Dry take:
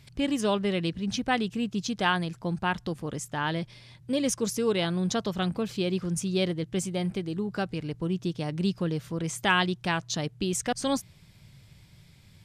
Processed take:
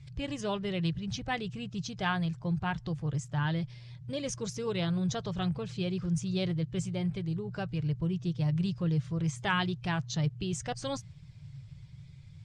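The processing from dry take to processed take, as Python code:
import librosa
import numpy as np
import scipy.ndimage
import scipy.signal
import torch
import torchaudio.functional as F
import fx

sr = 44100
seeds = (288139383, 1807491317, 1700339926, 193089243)

y = fx.spec_quant(x, sr, step_db=15)
y = scipy.signal.sosfilt(scipy.signal.butter(4, 7600.0, 'lowpass', fs=sr, output='sos'), y)
y = fx.low_shelf_res(y, sr, hz=180.0, db=8.0, q=3.0)
y = F.gain(torch.from_numpy(y), -5.5).numpy()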